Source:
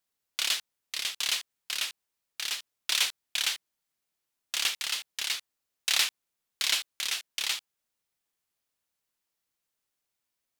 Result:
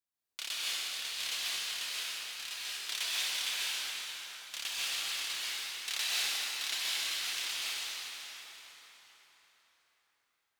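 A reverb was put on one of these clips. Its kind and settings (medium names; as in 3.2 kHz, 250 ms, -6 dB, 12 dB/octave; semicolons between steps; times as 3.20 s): plate-style reverb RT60 4.7 s, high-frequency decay 0.7×, pre-delay 115 ms, DRR -8.5 dB; trim -11.5 dB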